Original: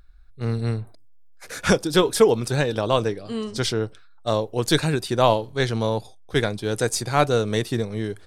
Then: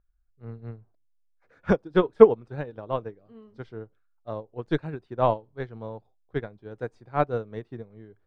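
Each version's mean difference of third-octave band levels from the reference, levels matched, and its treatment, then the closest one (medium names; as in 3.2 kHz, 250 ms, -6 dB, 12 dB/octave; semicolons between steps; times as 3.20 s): 13.0 dB: low-pass 1.5 kHz 12 dB/octave; upward expansion 2.5:1, over -27 dBFS; trim +4.5 dB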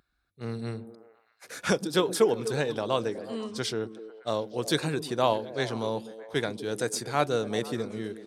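2.5 dB: high-pass 150 Hz 12 dB/octave; on a send: repeats whose band climbs or falls 123 ms, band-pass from 230 Hz, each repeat 0.7 oct, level -8 dB; on the sum: trim -6.5 dB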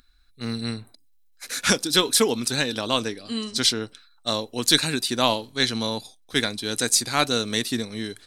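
5.5 dB: tilt shelf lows -9.5 dB, about 1.2 kHz; small resonant body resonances 250/4000 Hz, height 14 dB, ringing for 45 ms; trim -2 dB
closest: second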